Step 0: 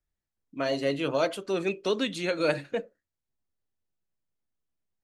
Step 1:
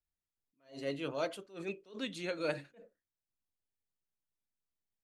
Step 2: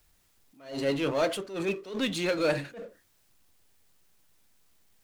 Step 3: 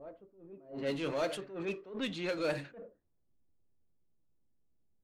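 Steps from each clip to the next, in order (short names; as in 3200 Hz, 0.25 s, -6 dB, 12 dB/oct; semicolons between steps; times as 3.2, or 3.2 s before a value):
attack slew limiter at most 170 dB/s; gain -9 dB
power-law curve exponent 0.7; gain +5.5 dB
reverse echo 1.16 s -14 dB; low-pass opened by the level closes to 370 Hz, open at -23.5 dBFS; gain -7 dB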